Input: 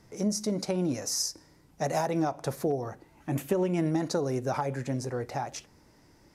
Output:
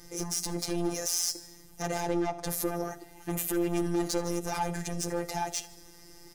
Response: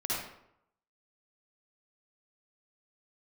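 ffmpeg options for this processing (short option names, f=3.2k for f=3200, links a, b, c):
-filter_complex "[0:a]asettb=1/sr,asplit=3[a][b][c];[a]atrim=end=1.824[d];[b]atrim=start=1.82:end=2.47,asetpts=PTS-STARTPTS,afade=t=in:d=0.004:c=qsin,afade=t=out:st=0.646:d=0.004:c=qsin,aemphasis=mode=reproduction:type=50fm[e];[c]atrim=start=2.466[f];[d][e]acrossfade=d=0.004:c1=hsin:c2=qsin[g];[g][f]acrossfade=d=0.004:c1=qsin:c2=hsin,crystalizer=i=3:c=0,lowshelf=f=180:g=7,alimiter=limit=-18.5dB:level=0:latency=1:release=12,asoftclip=type=tanh:threshold=-29.5dB,aecho=1:1:2.5:0.63,afftfilt=real='hypot(re,im)*cos(PI*b)':imag='0':win_size=1024:overlap=0.75,aecho=1:1:77|154|231|308|385:0.1|0.059|0.0348|0.0205|0.0121,volume=4.5dB"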